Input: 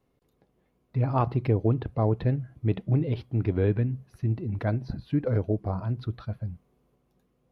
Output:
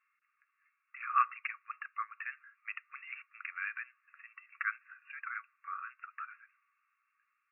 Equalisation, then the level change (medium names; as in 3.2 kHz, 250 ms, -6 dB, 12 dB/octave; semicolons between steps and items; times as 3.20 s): brick-wall FIR band-pass 1.1–2.8 kHz; +7.5 dB